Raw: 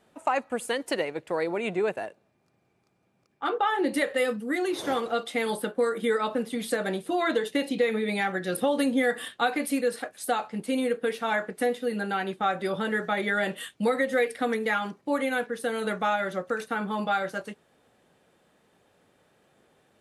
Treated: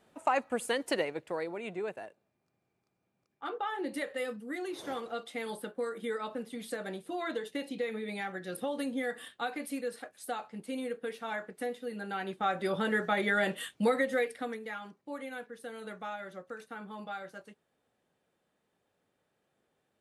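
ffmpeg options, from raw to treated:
ffmpeg -i in.wav -af "volume=5.5dB,afade=type=out:start_time=0.97:duration=0.56:silence=0.421697,afade=type=in:start_time=11.99:duration=0.81:silence=0.398107,afade=type=out:start_time=13.84:duration=0.77:silence=0.251189" out.wav

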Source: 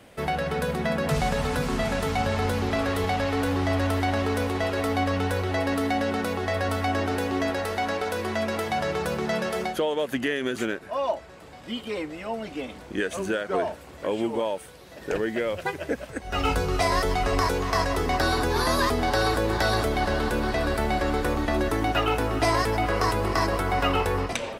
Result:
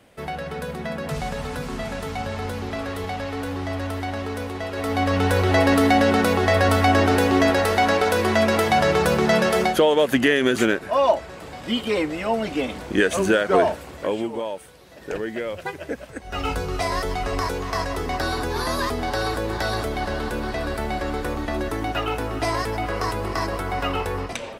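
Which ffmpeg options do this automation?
ffmpeg -i in.wav -af "volume=8.5dB,afade=type=in:start_time=4.7:duration=0.84:silence=0.251189,afade=type=out:start_time=13.68:duration=0.61:silence=0.316228" out.wav

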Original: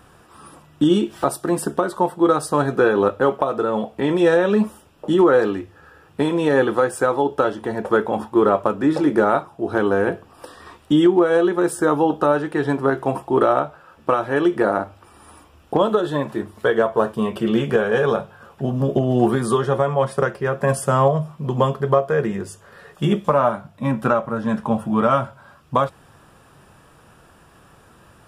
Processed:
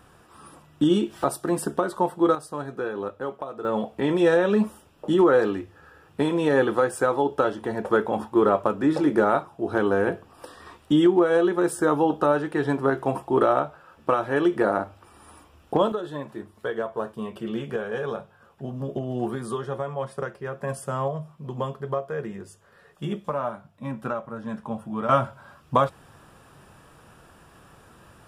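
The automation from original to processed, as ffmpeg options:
ffmpeg -i in.wav -af "asetnsamples=nb_out_samples=441:pad=0,asendcmd='2.35 volume volume -13.5dB;3.65 volume volume -3.5dB;15.92 volume volume -11dB;25.09 volume volume -1.5dB',volume=-4dB" out.wav

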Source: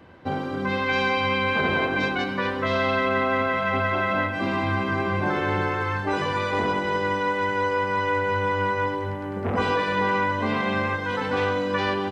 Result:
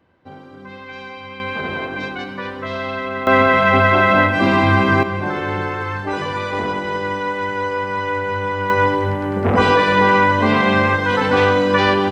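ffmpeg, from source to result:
ffmpeg -i in.wav -af "asetnsamples=nb_out_samples=441:pad=0,asendcmd='1.4 volume volume -2dB;3.27 volume volume 10.5dB;5.03 volume volume 2dB;8.7 volume volume 9.5dB',volume=-11dB" out.wav

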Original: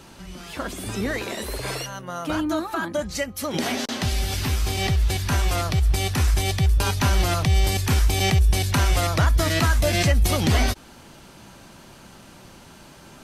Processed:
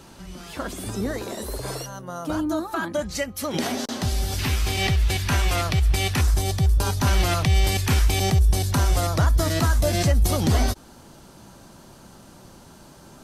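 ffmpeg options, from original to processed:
ffmpeg -i in.wav -af "asetnsamples=nb_out_samples=441:pad=0,asendcmd='0.9 equalizer g -11.5;2.74 equalizer g -1;3.67 equalizer g -7.5;4.39 equalizer g 3.5;6.21 equalizer g -8.5;7.07 equalizer g 1.5;8.2 equalizer g -8.5',equalizer=frequency=2400:width_type=o:width=1.2:gain=-3.5" out.wav

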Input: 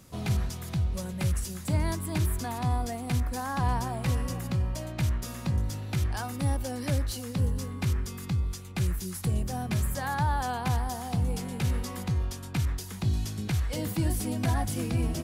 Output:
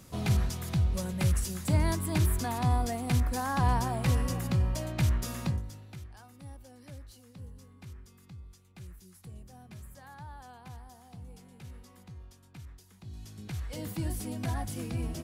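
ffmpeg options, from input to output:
ffmpeg -i in.wav -af "volume=14dB,afade=type=out:start_time=5.43:duration=0.18:silence=0.298538,afade=type=out:start_time=5.61:duration=0.47:silence=0.334965,afade=type=in:start_time=13.06:duration=0.81:silence=0.223872" out.wav

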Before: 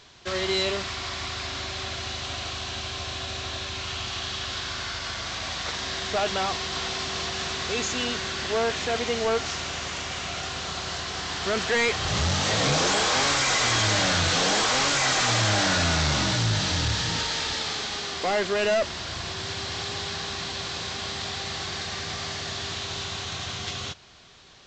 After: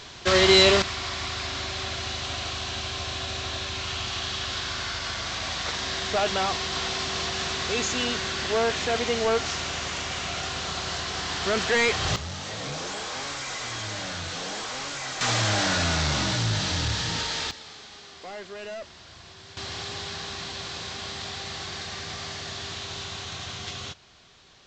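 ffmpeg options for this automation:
ffmpeg -i in.wav -af "asetnsamples=nb_out_samples=441:pad=0,asendcmd='0.82 volume volume 1dB;12.16 volume volume -10.5dB;15.21 volume volume -1.5dB;17.51 volume volume -14dB;19.57 volume volume -3dB',volume=9dB" out.wav

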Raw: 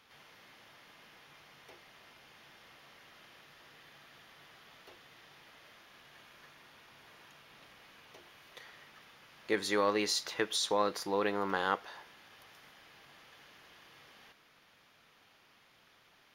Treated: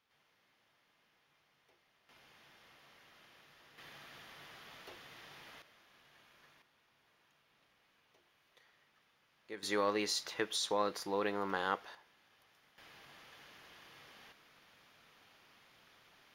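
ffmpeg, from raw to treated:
ffmpeg -i in.wav -af "asetnsamples=nb_out_samples=441:pad=0,asendcmd='2.09 volume volume -5dB;3.78 volume volume 3dB;5.62 volume volume -7.5dB;6.62 volume volume -15dB;9.63 volume volume -3.5dB;11.95 volume volume -11.5dB;12.78 volume volume 0dB',volume=-16dB" out.wav

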